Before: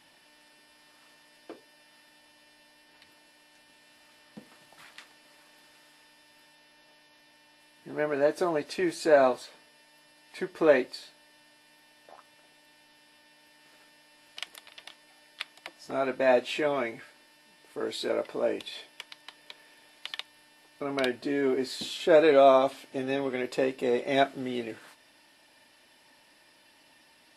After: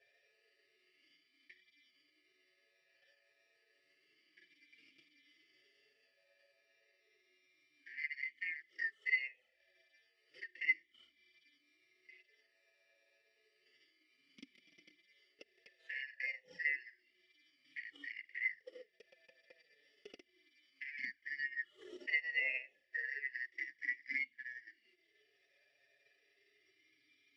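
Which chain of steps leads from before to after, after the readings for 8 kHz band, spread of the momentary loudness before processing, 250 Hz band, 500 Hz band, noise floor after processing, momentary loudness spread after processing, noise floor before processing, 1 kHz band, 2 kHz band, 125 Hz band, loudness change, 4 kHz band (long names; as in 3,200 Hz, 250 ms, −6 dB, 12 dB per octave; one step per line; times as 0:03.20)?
below −25 dB, 20 LU, −33.0 dB, −37.0 dB, −77 dBFS, 16 LU, −61 dBFS, below −40 dB, −2.0 dB, below −35 dB, −12.5 dB, −17.5 dB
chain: band-splitting scrambler in four parts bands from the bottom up 3142
flanger swept by the level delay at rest 7.5 ms, full sweep at −21.5 dBFS
harmonic and percussive parts rebalanced percussive −16 dB
in parallel at +2 dB: downward compressor, threshold −49 dBFS, peak gain reduction 24 dB
on the sum: transient designer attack +8 dB, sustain −9 dB
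formant filter swept between two vowels e-i 0.31 Hz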